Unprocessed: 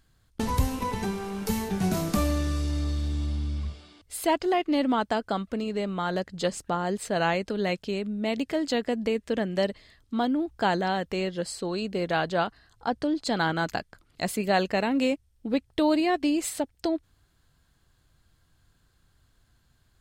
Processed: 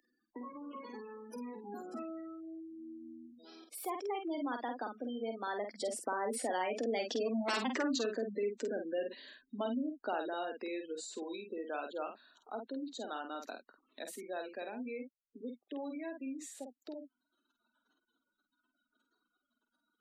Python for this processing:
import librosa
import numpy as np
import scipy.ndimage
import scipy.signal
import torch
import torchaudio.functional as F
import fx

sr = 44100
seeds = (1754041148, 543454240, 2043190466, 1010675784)

p1 = fx.law_mismatch(x, sr, coded='mu')
p2 = fx.doppler_pass(p1, sr, speed_mps=32, closest_m=4.6, pass_at_s=7.5)
p3 = fx.over_compress(p2, sr, threshold_db=-46.0, ratio=-1.0)
p4 = p2 + (p3 * librosa.db_to_amplitude(0.0))
p5 = 10.0 ** (-30.0 / 20.0) * (np.abs((p4 / 10.0 ** (-30.0 / 20.0) + 3.0) % 4.0 - 2.0) - 1.0)
p6 = fx.spec_gate(p5, sr, threshold_db=-20, keep='strong')
p7 = scipy.signal.sosfilt(scipy.signal.ellip(4, 1.0, 40, 240.0, 'highpass', fs=sr, output='sos'), p6)
p8 = fx.high_shelf(p7, sr, hz=5400.0, db=7.0)
p9 = fx.doubler(p8, sr, ms=49.0, db=-6)
p10 = fx.band_squash(p9, sr, depth_pct=40)
y = p10 * librosa.db_to_amplitude(4.0)